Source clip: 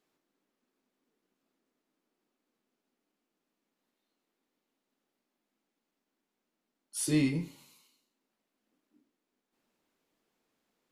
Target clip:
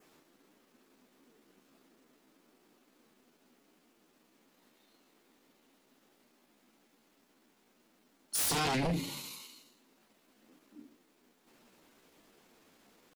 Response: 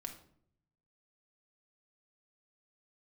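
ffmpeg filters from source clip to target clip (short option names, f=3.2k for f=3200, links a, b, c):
-af "adynamicequalizer=threshold=0.00158:dfrequency=3800:dqfactor=2.7:tfrequency=3800:tqfactor=2.7:attack=5:release=100:ratio=0.375:range=2.5:mode=boostabove:tftype=bell,acompressor=threshold=-36dB:ratio=3,aeval=exprs='0.0422*sin(PI/2*3.98*val(0)/0.0422)':c=same,atempo=0.83"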